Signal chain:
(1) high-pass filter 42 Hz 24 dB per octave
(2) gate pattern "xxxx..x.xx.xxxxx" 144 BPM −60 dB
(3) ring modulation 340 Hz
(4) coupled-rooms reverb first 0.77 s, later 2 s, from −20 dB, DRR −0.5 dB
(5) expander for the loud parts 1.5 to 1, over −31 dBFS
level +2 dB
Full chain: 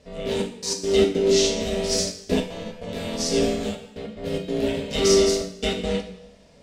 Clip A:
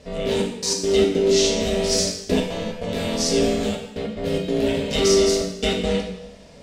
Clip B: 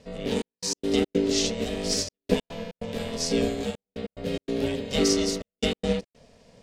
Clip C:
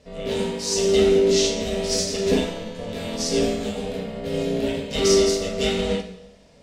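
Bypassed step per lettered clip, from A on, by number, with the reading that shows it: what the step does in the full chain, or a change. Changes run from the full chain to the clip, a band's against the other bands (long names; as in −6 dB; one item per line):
5, change in momentary loudness spread −4 LU
4, change in momentary loudness spread −4 LU
2, change in momentary loudness spread −1 LU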